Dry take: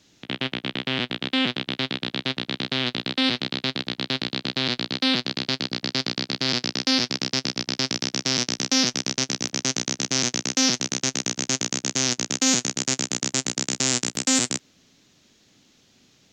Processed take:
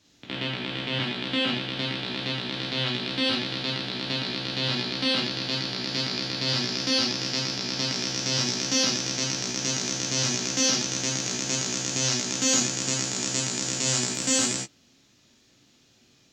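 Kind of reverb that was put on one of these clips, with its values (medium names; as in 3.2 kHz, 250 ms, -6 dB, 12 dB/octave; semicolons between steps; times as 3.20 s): gated-style reverb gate 110 ms flat, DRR -3 dB; trim -6.5 dB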